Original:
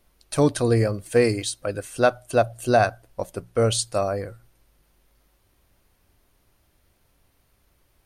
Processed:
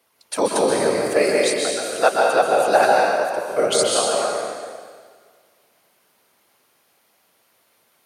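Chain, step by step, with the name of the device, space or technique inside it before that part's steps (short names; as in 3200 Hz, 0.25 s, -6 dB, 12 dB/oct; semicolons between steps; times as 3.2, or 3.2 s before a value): whispering ghost (whisperiser; HPF 460 Hz 12 dB/oct; reverb RT60 1.7 s, pre-delay 0.12 s, DRR -2 dB); gain +3 dB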